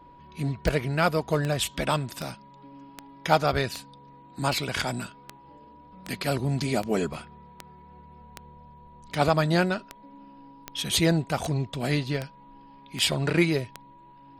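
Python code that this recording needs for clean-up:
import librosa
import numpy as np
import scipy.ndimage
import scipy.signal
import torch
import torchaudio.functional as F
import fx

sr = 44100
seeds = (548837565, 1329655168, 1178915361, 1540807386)

y = fx.fix_declick_ar(x, sr, threshold=10.0)
y = fx.notch(y, sr, hz=970.0, q=30.0)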